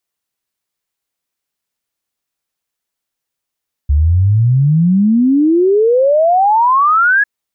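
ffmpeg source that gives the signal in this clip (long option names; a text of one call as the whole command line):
ffmpeg -f lavfi -i "aevalsrc='0.422*clip(min(t,3.35-t)/0.01,0,1)*sin(2*PI*69*3.35/log(1700/69)*(exp(log(1700/69)*t/3.35)-1))':duration=3.35:sample_rate=44100" out.wav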